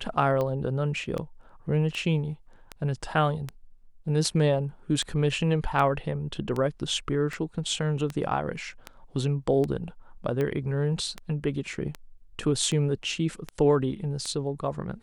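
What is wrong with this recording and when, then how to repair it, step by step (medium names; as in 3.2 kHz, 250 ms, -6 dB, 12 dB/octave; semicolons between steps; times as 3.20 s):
tick 78 rpm -18 dBFS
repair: de-click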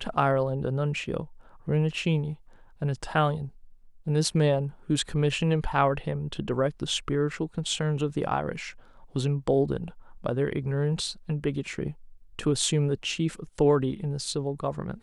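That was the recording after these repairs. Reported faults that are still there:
nothing left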